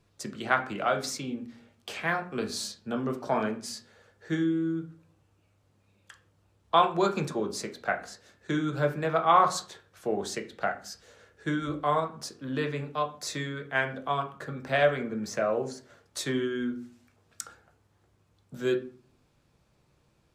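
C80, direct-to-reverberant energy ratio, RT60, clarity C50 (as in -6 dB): 18.5 dB, 4.5 dB, 0.45 s, 13.0 dB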